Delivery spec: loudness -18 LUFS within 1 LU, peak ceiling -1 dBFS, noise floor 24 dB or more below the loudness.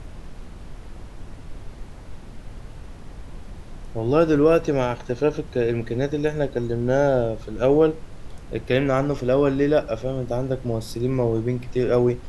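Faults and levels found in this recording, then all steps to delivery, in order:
noise floor -40 dBFS; noise floor target -47 dBFS; loudness -22.5 LUFS; peak -6.0 dBFS; loudness target -18.0 LUFS
-> noise print and reduce 7 dB; gain +4.5 dB

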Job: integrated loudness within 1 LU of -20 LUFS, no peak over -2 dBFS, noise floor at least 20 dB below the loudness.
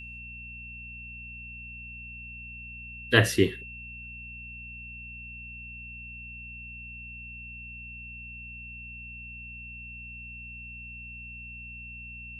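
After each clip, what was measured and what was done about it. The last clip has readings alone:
hum 60 Hz; harmonics up to 240 Hz; hum level -45 dBFS; steady tone 2700 Hz; tone level -41 dBFS; loudness -34.5 LUFS; peak -3.5 dBFS; loudness target -20.0 LUFS
-> de-hum 60 Hz, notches 4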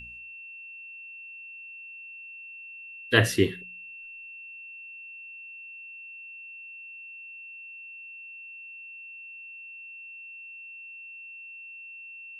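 hum none; steady tone 2700 Hz; tone level -41 dBFS
-> notch 2700 Hz, Q 30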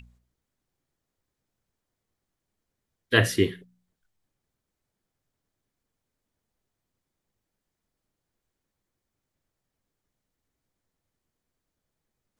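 steady tone none; loudness -24.0 LUFS; peak -3.5 dBFS; loudness target -20.0 LUFS
-> gain +4 dB; limiter -2 dBFS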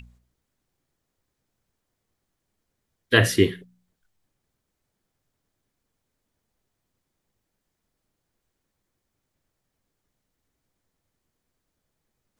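loudness -20.5 LUFS; peak -2.0 dBFS; noise floor -80 dBFS

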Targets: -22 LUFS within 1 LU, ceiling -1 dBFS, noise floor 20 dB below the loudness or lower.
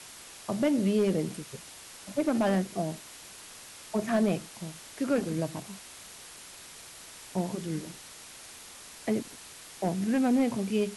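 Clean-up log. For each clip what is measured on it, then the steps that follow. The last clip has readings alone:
clipped 0.4%; flat tops at -19.0 dBFS; noise floor -48 dBFS; noise floor target -50 dBFS; loudness -30.0 LUFS; peak -19.0 dBFS; loudness target -22.0 LUFS
-> clip repair -19 dBFS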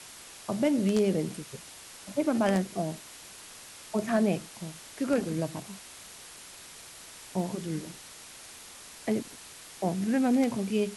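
clipped 0.0%; noise floor -48 dBFS; noise floor target -50 dBFS
-> denoiser 6 dB, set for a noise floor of -48 dBFS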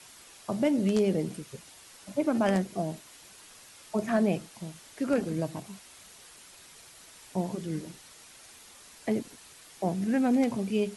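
noise floor -53 dBFS; loudness -29.5 LUFS; peak -12.0 dBFS; loudness target -22.0 LUFS
-> gain +7.5 dB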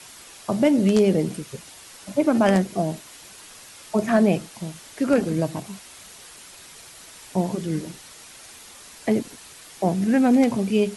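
loudness -22.0 LUFS; peak -4.5 dBFS; noise floor -45 dBFS

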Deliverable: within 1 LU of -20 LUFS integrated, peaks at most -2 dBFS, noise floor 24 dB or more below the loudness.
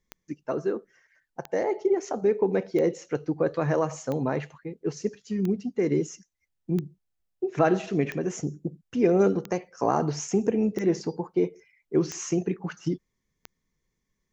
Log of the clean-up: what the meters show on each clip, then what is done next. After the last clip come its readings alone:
clicks 11; loudness -27.5 LUFS; peak -8.5 dBFS; loudness target -20.0 LUFS
-> de-click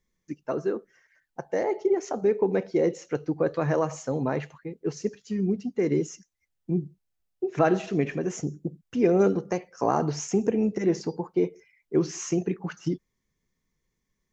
clicks 0; loudness -27.5 LUFS; peak -8.5 dBFS; loudness target -20.0 LUFS
-> gain +7.5 dB; limiter -2 dBFS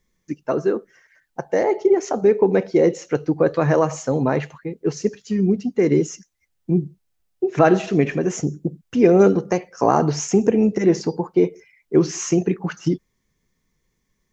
loudness -20.0 LUFS; peak -2.0 dBFS; noise floor -72 dBFS

